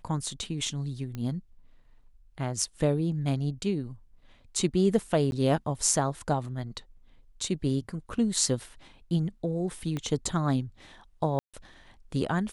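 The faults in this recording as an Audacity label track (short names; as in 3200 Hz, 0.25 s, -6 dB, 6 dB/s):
1.150000	1.150000	pop -23 dBFS
5.310000	5.320000	gap 11 ms
9.970000	9.970000	pop -20 dBFS
11.390000	11.540000	gap 0.146 s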